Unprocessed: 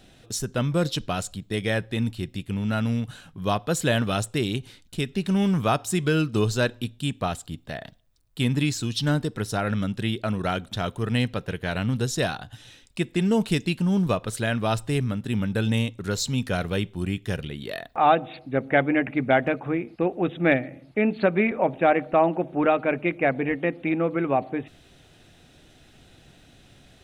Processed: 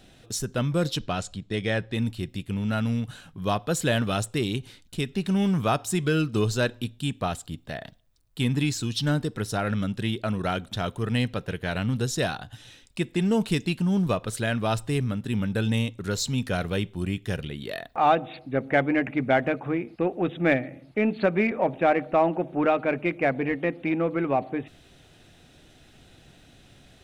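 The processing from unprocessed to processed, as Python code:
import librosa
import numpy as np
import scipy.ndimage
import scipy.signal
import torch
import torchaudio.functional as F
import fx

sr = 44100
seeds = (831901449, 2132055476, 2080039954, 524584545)

p1 = fx.lowpass(x, sr, hz=6700.0, slope=12, at=(0.98, 1.94))
p2 = 10.0 ** (-23.5 / 20.0) * np.tanh(p1 / 10.0 ** (-23.5 / 20.0))
p3 = p1 + (p2 * 10.0 ** (-11.0 / 20.0))
y = p3 * 10.0 ** (-2.5 / 20.0)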